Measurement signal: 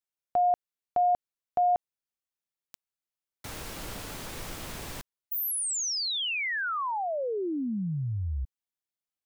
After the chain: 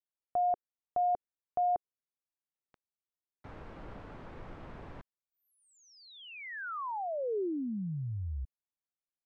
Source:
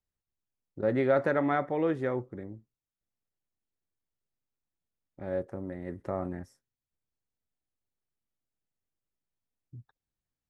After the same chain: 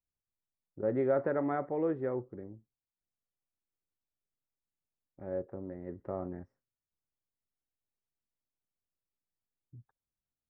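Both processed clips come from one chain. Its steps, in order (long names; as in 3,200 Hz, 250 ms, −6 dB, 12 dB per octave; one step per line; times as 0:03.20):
low-pass filter 1,400 Hz 12 dB per octave
dynamic equaliser 410 Hz, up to +4 dB, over −44 dBFS, Q 1.9
level −5.5 dB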